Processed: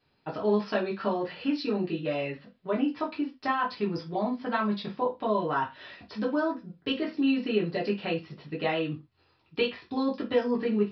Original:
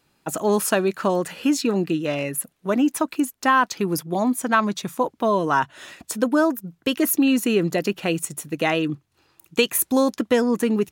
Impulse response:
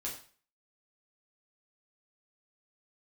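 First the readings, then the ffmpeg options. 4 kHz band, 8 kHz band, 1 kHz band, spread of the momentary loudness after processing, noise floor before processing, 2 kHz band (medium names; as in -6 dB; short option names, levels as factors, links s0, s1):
-7.5 dB, under -35 dB, -8.0 dB, 8 LU, -68 dBFS, -9.0 dB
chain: -filter_complex "[0:a]acompressor=threshold=0.0631:ratio=1.5[s0];[1:a]atrim=start_sample=2205,afade=t=out:st=0.33:d=0.01,atrim=end_sample=14994,asetrate=79380,aresample=44100[s1];[s0][s1]afir=irnorm=-1:irlink=0,aresample=11025,aresample=44100"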